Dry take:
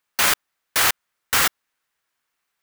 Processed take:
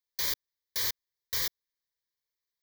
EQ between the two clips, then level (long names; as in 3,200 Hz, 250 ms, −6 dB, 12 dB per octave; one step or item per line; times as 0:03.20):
parametric band 9,900 Hz +3.5 dB 0.31 octaves
phaser with its sweep stopped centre 570 Hz, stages 4
phaser with its sweep stopped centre 2,700 Hz, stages 6
−7.5 dB